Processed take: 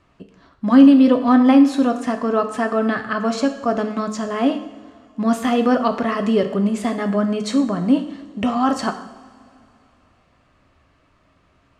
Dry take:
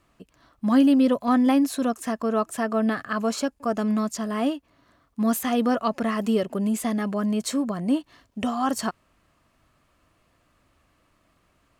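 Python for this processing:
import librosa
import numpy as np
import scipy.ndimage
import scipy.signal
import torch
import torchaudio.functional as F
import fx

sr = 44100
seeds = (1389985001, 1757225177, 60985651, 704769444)

y = fx.air_absorb(x, sr, metres=92.0)
y = fx.rev_double_slope(y, sr, seeds[0], early_s=0.74, late_s=3.1, knee_db=-18, drr_db=6.0)
y = y * 10.0 ** (5.5 / 20.0)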